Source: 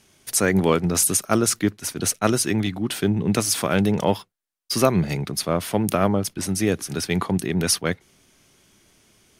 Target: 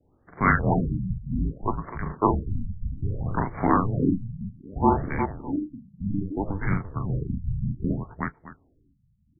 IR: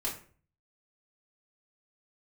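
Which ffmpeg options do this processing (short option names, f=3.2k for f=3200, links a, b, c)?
-filter_complex "[0:a]equalizer=f=840:w=5.9:g=-5,acrossover=split=1100[a][b];[a]alimiter=limit=-16dB:level=0:latency=1:release=34[c];[c][b]amix=inputs=2:normalize=0,highpass=f=440:t=q:w=0.5412,highpass=f=440:t=q:w=1.307,lowpass=f=3.4k:t=q:w=0.5176,lowpass=f=3.4k:t=q:w=0.7071,lowpass=f=3.4k:t=q:w=1.932,afreqshift=-300,adynamicsmooth=sensitivity=1:basefreq=600,asettb=1/sr,asplit=3[d][e][f];[d]atrim=end=5.204[g];[e]atrim=start=5.2:end=6.01,asetpts=PTS-STARTPTS,afade=t=in:d=0.004:c=qsin,afade=t=out:st=0.806:d=0.004:c=qsin,asplit=3[h][i][j];[h]bandpass=f=300:t=q:w=8,volume=0dB[k];[i]bandpass=f=870:t=q:w=8,volume=-6dB[l];[j]bandpass=f=2.24k:t=q:w=8,volume=-9dB[m];[k][l][m]amix=inputs=3:normalize=0[n];[f]atrim=start=6.006[o];[g][n]acrossfade=d=0.004:c1=hsin:c2=qsin[p];[p][o]acrossfade=d=0.004:c1=qsin:c2=hsin,aecho=1:1:40|73|362|609:0.708|0.398|0.531|0.106,asplit=2[q][r];[1:a]atrim=start_sample=2205,atrim=end_sample=3087,asetrate=74970,aresample=44100[s];[r][s]afir=irnorm=-1:irlink=0,volume=-10.5dB[t];[q][t]amix=inputs=2:normalize=0,afftfilt=real='re*lt(b*sr/1024,210*pow(2400/210,0.5+0.5*sin(2*PI*0.63*pts/sr)))':imag='im*lt(b*sr/1024,210*pow(2400/210,0.5+0.5*sin(2*PI*0.63*pts/sr)))':win_size=1024:overlap=0.75,volume=5dB"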